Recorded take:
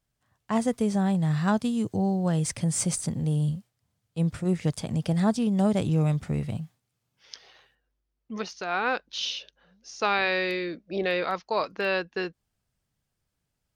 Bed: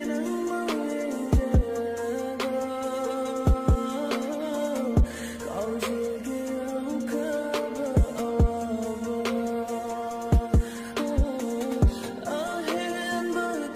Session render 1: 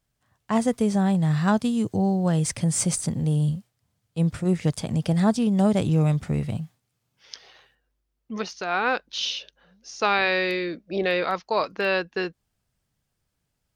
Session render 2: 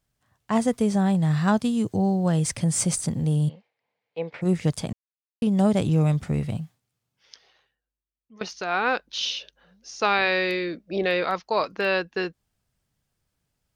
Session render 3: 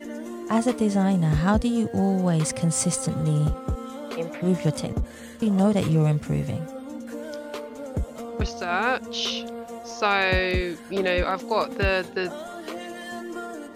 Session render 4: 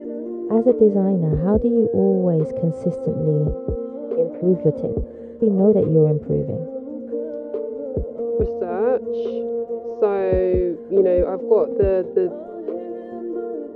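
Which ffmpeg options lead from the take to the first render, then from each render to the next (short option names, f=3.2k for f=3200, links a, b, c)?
-af "volume=3dB"
-filter_complex "[0:a]asplit=3[a][b][c];[a]afade=t=out:st=3.48:d=0.02[d];[b]highpass=460,equalizer=f=480:t=q:w=4:g=9,equalizer=f=870:t=q:w=4:g=6,equalizer=f=1.3k:t=q:w=4:g=-7,equalizer=f=2.2k:t=q:w=4:g=9,equalizer=f=3.3k:t=q:w=4:g=-4,lowpass=f=3.8k:w=0.5412,lowpass=f=3.8k:w=1.3066,afade=t=in:st=3.48:d=0.02,afade=t=out:st=4.41:d=0.02[e];[c]afade=t=in:st=4.41:d=0.02[f];[d][e][f]amix=inputs=3:normalize=0,asplit=4[g][h][i][j];[g]atrim=end=4.93,asetpts=PTS-STARTPTS,afade=t=out:st=4.926:d=0.004:c=hsin[k];[h]atrim=start=4.93:end=5.42,asetpts=PTS-STARTPTS,volume=0[l];[i]atrim=start=5.42:end=8.41,asetpts=PTS-STARTPTS,afade=t=in:d=0.004:c=hsin,afade=t=out:st=1.09:d=1.9:c=qua:silence=0.125893[m];[j]atrim=start=8.41,asetpts=PTS-STARTPTS,afade=t=in:d=0.004:c=hsin:silence=0.125893[n];[k][l][m][n]concat=n=4:v=0:a=1"
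-filter_complex "[1:a]volume=-6.5dB[a];[0:a][a]amix=inputs=2:normalize=0"
-af "crystalizer=i=7.5:c=0,lowpass=f=450:t=q:w=4.9"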